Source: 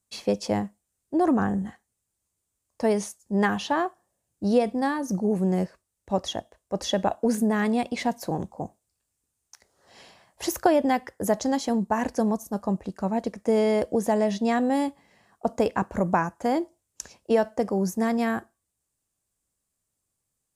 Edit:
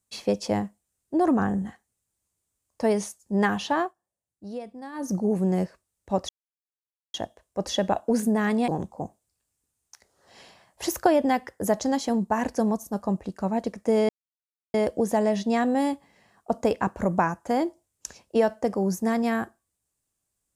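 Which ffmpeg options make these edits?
ffmpeg -i in.wav -filter_complex "[0:a]asplit=6[link_01][link_02][link_03][link_04][link_05][link_06];[link_01]atrim=end=3.94,asetpts=PTS-STARTPTS,afade=type=out:start_time=3.82:duration=0.12:silence=0.188365[link_07];[link_02]atrim=start=3.94:end=4.92,asetpts=PTS-STARTPTS,volume=-14.5dB[link_08];[link_03]atrim=start=4.92:end=6.29,asetpts=PTS-STARTPTS,afade=type=in:duration=0.12:silence=0.188365,afade=type=out:start_time=1.366:duration=0.004:curve=hsin,apad=pad_dur=0.85[link_09];[link_04]atrim=start=6.29:end=7.832,asetpts=PTS-STARTPTS,afade=type=in:duration=0.004:curve=hsin[link_10];[link_05]atrim=start=8.278:end=13.69,asetpts=PTS-STARTPTS,afade=type=out:start_time=5.408:duration=0.004:curve=hsin,apad=pad_dur=0.65[link_11];[link_06]atrim=start=13.69,asetpts=PTS-STARTPTS,afade=type=in:duration=0.004:curve=hsin[link_12];[link_07][link_08][link_09][link_10]concat=n=4:v=0:a=1[link_13];[link_11][link_12]concat=n=2:v=0:a=1[link_14];[link_13][link_14]acrossfade=duration=0.004:curve1=hsin:curve2=hsin" out.wav

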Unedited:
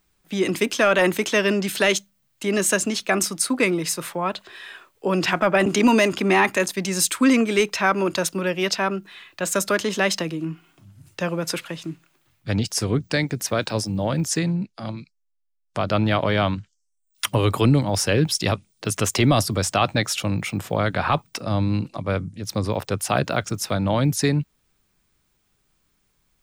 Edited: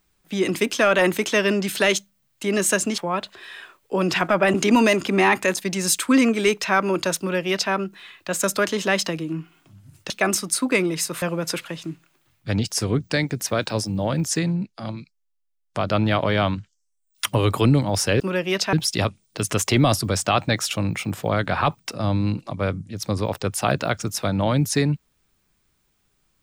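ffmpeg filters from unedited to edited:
ffmpeg -i in.wav -filter_complex "[0:a]asplit=6[link_01][link_02][link_03][link_04][link_05][link_06];[link_01]atrim=end=2.982[link_07];[link_02]atrim=start=4.098:end=11.222[link_08];[link_03]atrim=start=2.978:end=4.102[link_09];[link_04]atrim=start=11.218:end=18.202[link_10];[link_05]atrim=start=8.308:end=8.842[link_11];[link_06]atrim=start=18.198[link_12];[link_07][link_08]acrossfade=duration=0.004:curve1=hsin:curve2=hsin[link_13];[link_13][link_09]acrossfade=duration=0.004:curve1=hsin:curve2=hsin[link_14];[link_14][link_10]acrossfade=duration=0.004:curve1=hsin:curve2=hsin[link_15];[link_15][link_11]acrossfade=duration=0.004:curve1=hsin:curve2=hsin[link_16];[link_16][link_12]acrossfade=duration=0.004:curve1=hsin:curve2=hsin" out.wav

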